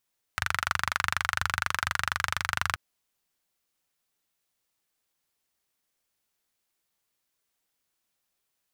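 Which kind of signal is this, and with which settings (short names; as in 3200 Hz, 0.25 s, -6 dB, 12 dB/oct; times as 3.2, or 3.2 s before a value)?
single-cylinder engine model, steady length 2.38 s, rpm 2900, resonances 88/1400 Hz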